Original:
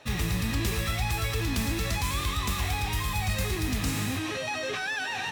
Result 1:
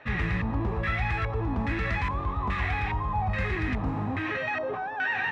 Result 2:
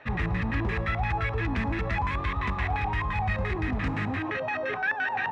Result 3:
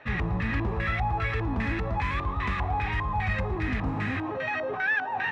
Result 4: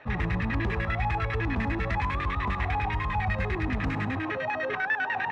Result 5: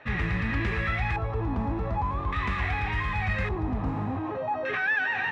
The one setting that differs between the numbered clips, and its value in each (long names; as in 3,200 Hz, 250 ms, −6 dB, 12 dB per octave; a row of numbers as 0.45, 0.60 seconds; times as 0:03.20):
auto-filter low-pass, speed: 1.2, 5.8, 2.5, 10, 0.43 Hertz